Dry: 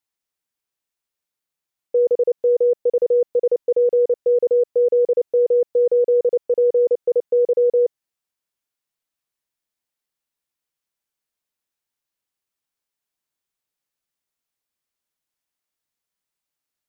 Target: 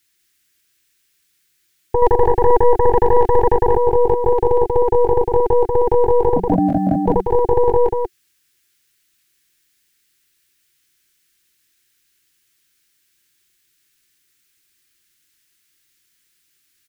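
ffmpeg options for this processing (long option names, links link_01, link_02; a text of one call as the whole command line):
ffmpeg -i in.wav -filter_complex "[0:a]firequalizer=gain_entry='entry(140,0);entry(230,-6);entry(360,3);entry(550,-30);entry(880,-15);entry(1600,3)':delay=0.05:min_phase=1,asettb=1/sr,asplit=3[link_01][link_02][link_03];[link_01]atrim=end=2.024[link_04];[link_02]atrim=start=2.02:end=3.63,asetpts=PTS-STARTPTS,afade=type=in:duration=0.004:curve=qsin,afade=type=out:start_time=1.606:duration=0.004:curve=qsin,acontrast=21[link_05];[link_03]atrim=start=3.626[link_06];[link_04][link_05]acrossfade=duration=0.004:curve1=hsin:curve2=qsin[link_07];[link_07][link_06]acrossfade=duration=0.004:curve1=qsin:curve2=hsin,aeval=exprs='0.266*(cos(1*acos(clip(val(0)/0.266,-1,1)))-cos(1*PI/2))+0.075*(cos(8*acos(clip(val(0)/0.266,-1,1)))-cos(8*PI/2))':channel_layout=same,asettb=1/sr,asplit=3[link_08][link_09][link_10];[link_08]atrim=end=6.364[link_11];[link_09]atrim=start=6.36:end=7.07,asetpts=PTS-STARTPTS,afade=type=in:duration=0.004:curve=qsin,afade=type=out:start_time=0.706:duration=0.004:curve=qsin,afreqshift=-190[link_12];[link_10]atrim=start=7.066[link_13];[link_11][link_12]acrossfade=duration=0.004:curve1=hsin:curve2=qsin[link_14];[link_14][link_13]acrossfade=duration=0.004:curve1=qsin:curve2=hsin,aecho=1:1:188:0.631,alimiter=level_in=18dB:limit=-1dB:release=50:level=0:latency=1,volume=-1dB" out.wav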